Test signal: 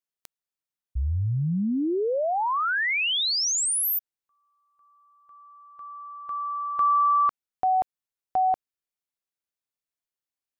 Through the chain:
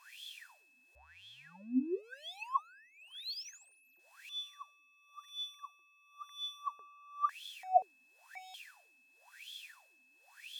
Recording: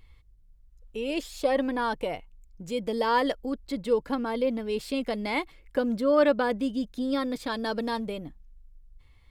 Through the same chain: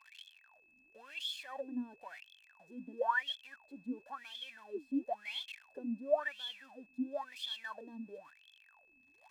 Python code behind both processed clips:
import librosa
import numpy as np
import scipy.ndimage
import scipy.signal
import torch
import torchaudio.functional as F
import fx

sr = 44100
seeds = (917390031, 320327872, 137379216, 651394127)

y = x + 0.5 * 10.0 ** (-18.0 / 20.0) * np.diff(np.sign(x), prepend=np.sign(x[:1]))
y = fx.wah_lfo(y, sr, hz=0.97, low_hz=250.0, high_hz=3400.0, q=21.0)
y = y + 0.56 * np.pad(y, (int(1.2 * sr / 1000.0), 0))[:len(y)]
y = y + 10.0 ** (-68.0 / 20.0) * np.sin(2.0 * np.pi * 2600.0 * np.arange(len(y)) / sr)
y = F.gain(torch.from_numpy(y), 2.5).numpy()